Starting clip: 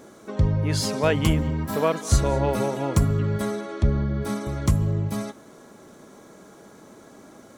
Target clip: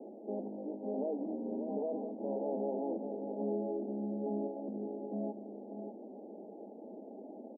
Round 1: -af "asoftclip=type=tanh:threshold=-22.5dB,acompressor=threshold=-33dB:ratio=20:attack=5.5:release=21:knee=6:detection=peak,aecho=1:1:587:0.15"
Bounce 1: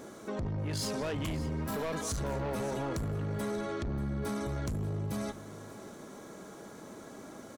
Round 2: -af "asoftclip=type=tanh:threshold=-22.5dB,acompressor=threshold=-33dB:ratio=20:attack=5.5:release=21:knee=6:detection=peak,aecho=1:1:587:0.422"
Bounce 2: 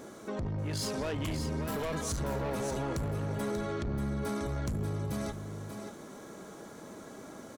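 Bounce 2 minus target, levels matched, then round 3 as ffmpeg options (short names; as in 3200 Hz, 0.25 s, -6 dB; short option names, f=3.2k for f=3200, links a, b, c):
500 Hz band -4.0 dB
-af "asoftclip=type=tanh:threshold=-22.5dB,acompressor=threshold=-33dB:ratio=20:attack=5.5:release=21:knee=6:detection=peak,asuperpass=centerf=410:order=20:qfactor=0.65,aecho=1:1:587:0.422"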